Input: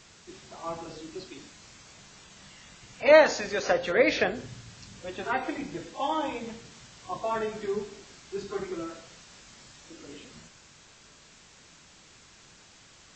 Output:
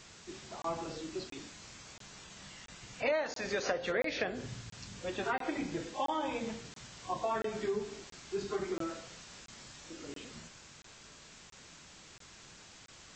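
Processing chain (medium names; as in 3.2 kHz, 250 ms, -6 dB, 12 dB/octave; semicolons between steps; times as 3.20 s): compression 6:1, threshold -30 dBFS, peak gain reduction 17 dB; crackling interface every 0.68 s, samples 1024, zero, from 0.62 s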